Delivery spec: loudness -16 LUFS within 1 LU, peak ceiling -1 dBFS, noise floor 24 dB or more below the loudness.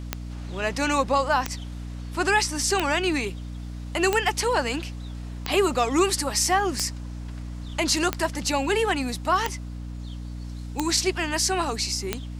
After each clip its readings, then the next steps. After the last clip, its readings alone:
clicks 10; hum 60 Hz; harmonics up to 300 Hz; hum level -32 dBFS; loudness -24.5 LUFS; peak -7.5 dBFS; loudness target -16.0 LUFS
-> de-click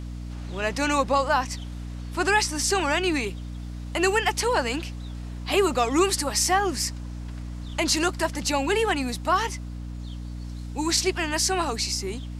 clicks 0; hum 60 Hz; harmonics up to 300 Hz; hum level -32 dBFS
-> de-hum 60 Hz, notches 5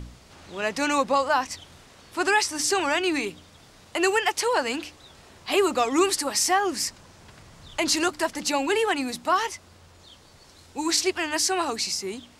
hum none; loudness -24.5 LUFS; peak -8.5 dBFS; loudness target -16.0 LUFS
-> gain +8.5 dB; limiter -1 dBFS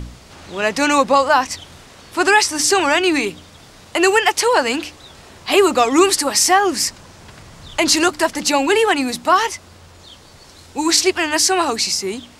loudness -16.0 LUFS; peak -1.0 dBFS; noise floor -44 dBFS

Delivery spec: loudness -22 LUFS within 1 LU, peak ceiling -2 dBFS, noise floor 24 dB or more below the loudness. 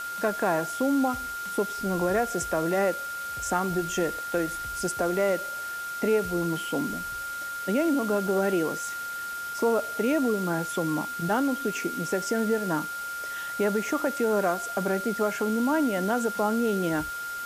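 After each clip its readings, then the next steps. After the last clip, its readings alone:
steady tone 1400 Hz; tone level -32 dBFS; noise floor -35 dBFS; noise floor target -52 dBFS; loudness -27.5 LUFS; peak -12.5 dBFS; loudness target -22.0 LUFS
-> notch 1400 Hz, Q 30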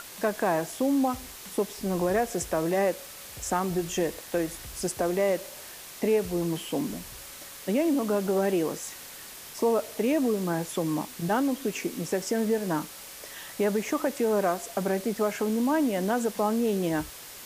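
steady tone none; noise floor -44 dBFS; noise floor target -52 dBFS
-> denoiser 8 dB, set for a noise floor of -44 dBFS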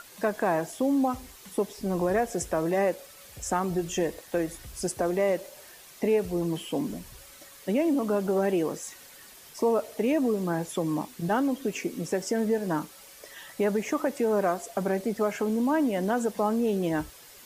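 noise floor -50 dBFS; noise floor target -52 dBFS
-> denoiser 6 dB, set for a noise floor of -50 dBFS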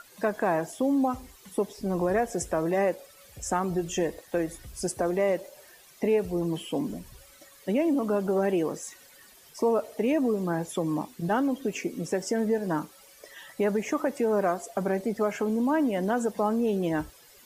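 noise floor -54 dBFS; loudness -28.0 LUFS; peak -14.0 dBFS; loudness target -22.0 LUFS
-> gain +6 dB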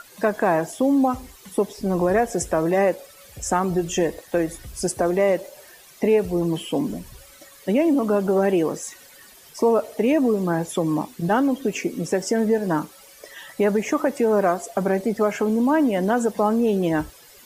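loudness -22.0 LUFS; peak -8.0 dBFS; noise floor -48 dBFS

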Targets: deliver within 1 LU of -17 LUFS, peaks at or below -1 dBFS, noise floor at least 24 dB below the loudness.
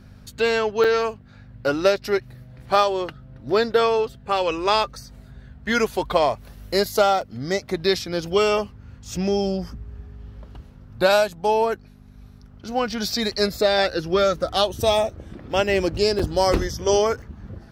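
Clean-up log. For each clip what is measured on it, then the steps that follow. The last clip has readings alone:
dropouts 4; longest dropout 4.9 ms; hum 50 Hz; harmonics up to 250 Hz; hum level -46 dBFS; loudness -22.0 LUFS; peak -4.5 dBFS; loudness target -17.0 LUFS
-> interpolate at 0.84/7.21/16.19/17.22, 4.9 ms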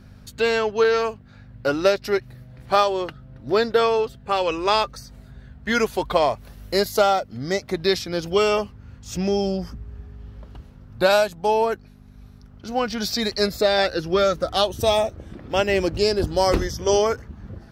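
dropouts 0; hum 50 Hz; harmonics up to 250 Hz; hum level -46 dBFS
-> de-hum 50 Hz, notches 5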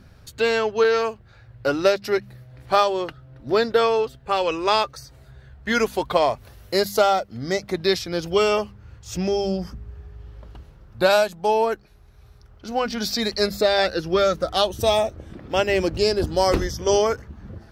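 hum none; loudness -22.0 LUFS; peak -4.5 dBFS; loudness target -17.0 LUFS
-> gain +5 dB; limiter -1 dBFS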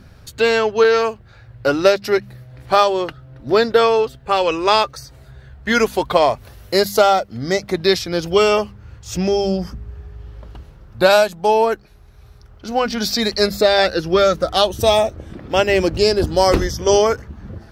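loudness -17.0 LUFS; peak -1.0 dBFS; noise floor -45 dBFS

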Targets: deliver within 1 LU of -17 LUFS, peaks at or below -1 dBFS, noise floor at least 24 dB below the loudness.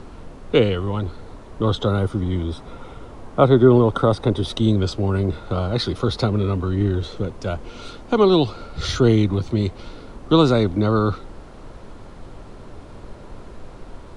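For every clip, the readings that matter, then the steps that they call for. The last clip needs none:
noise floor -40 dBFS; noise floor target -44 dBFS; loudness -20.0 LUFS; peak -1.5 dBFS; loudness target -17.0 LUFS
-> noise print and reduce 6 dB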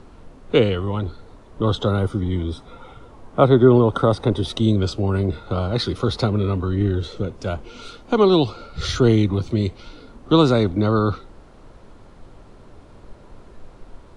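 noise floor -46 dBFS; loudness -20.0 LUFS; peak -1.5 dBFS; loudness target -17.0 LUFS
-> gain +3 dB; limiter -1 dBFS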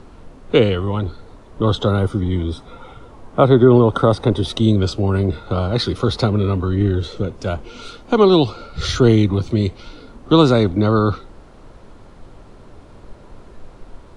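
loudness -17.5 LUFS; peak -1.0 dBFS; noise floor -43 dBFS

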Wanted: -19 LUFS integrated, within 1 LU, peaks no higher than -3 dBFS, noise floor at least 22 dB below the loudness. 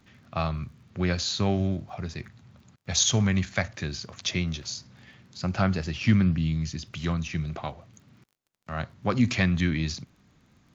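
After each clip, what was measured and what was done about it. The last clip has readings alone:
ticks 29/s; loudness -27.5 LUFS; peak -8.5 dBFS; loudness target -19.0 LUFS
-> de-click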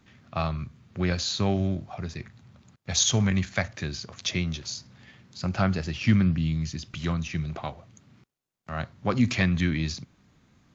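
ticks 0.093/s; loudness -27.5 LUFS; peak -8.5 dBFS; loudness target -19.0 LUFS
-> gain +8.5 dB; limiter -3 dBFS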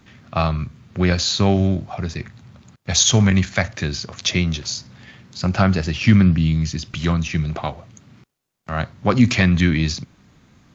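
loudness -19.5 LUFS; peak -3.0 dBFS; noise floor -57 dBFS

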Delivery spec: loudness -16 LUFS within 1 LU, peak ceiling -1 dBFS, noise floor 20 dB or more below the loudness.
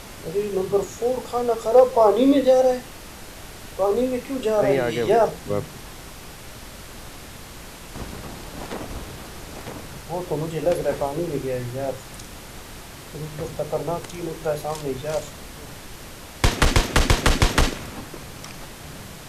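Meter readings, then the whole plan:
noise floor -40 dBFS; noise floor target -43 dBFS; loudness -22.5 LUFS; peak -4.5 dBFS; loudness target -16.0 LUFS
-> noise print and reduce 6 dB; gain +6.5 dB; limiter -1 dBFS

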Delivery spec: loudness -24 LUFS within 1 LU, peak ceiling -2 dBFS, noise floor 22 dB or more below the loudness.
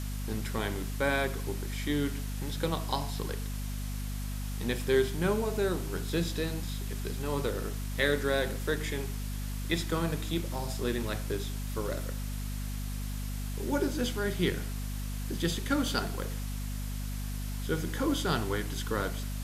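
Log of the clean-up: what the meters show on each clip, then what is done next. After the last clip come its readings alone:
hum 50 Hz; harmonics up to 250 Hz; hum level -33 dBFS; noise floor -35 dBFS; noise floor target -55 dBFS; loudness -33.0 LUFS; peak -11.5 dBFS; loudness target -24.0 LUFS
-> de-hum 50 Hz, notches 5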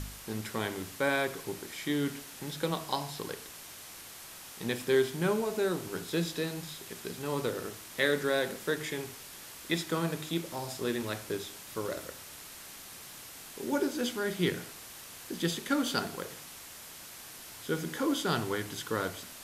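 hum none; noise floor -48 dBFS; noise floor target -56 dBFS
-> noise print and reduce 8 dB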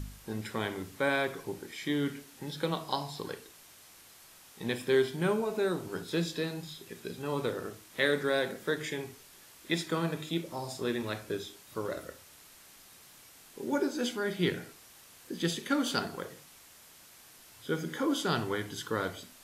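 noise floor -56 dBFS; loudness -33.5 LUFS; peak -12.0 dBFS; loudness target -24.0 LUFS
-> gain +9.5 dB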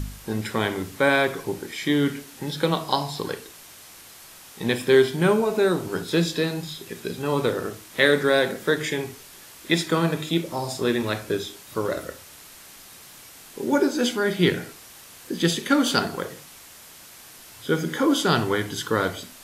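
loudness -24.0 LUFS; peak -2.5 dBFS; noise floor -46 dBFS

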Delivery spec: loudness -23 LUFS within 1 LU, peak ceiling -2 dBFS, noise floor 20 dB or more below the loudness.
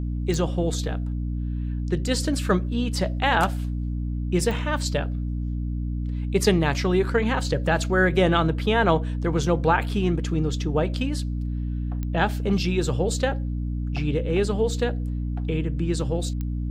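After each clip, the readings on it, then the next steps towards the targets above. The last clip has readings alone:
clicks 4; hum 60 Hz; harmonics up to 300 Hz; hum level -25 dBFS; loudness -24.5 LUFS; peak -7.0 dBFS; loudness target -23.0 LUFS
-> de-click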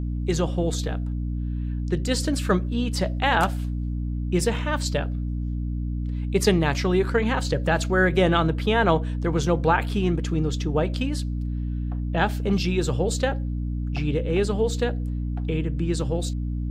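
clicks 0; hum 60 Hz; harmonics up to 300 Hz; hum level -25 dBFS
-> notches 60/120/180/240/300 Hz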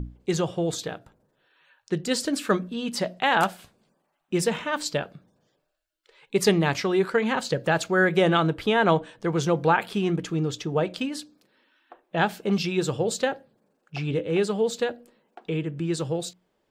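hum none; loudness -25.5 LUFS; peak -8.0 dBFS; loudness target -23.0 LUFS
-> gain +2.5 dB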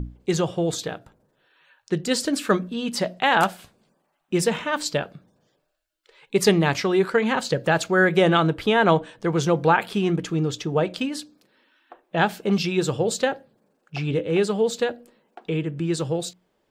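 loudness -23.0 LUFS; peak -5.5 dBFS; noise floor -71 dBFS

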